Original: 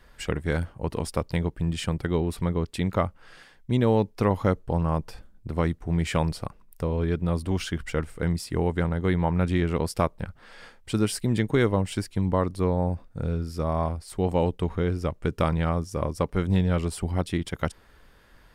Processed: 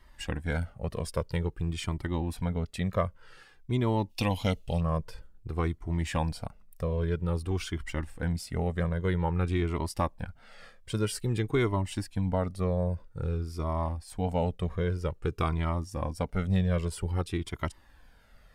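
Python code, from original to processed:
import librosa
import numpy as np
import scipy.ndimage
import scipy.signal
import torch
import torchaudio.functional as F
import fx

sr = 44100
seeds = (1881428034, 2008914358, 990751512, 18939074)

y = fx.high_shelf_res(x, sr, hz=2100.0, db=10.5, q=3.0, at=(4.09, 4.79), fade=0.02)
y = fx.comb_cascade(y, sr, direction='falling', hz=0.51)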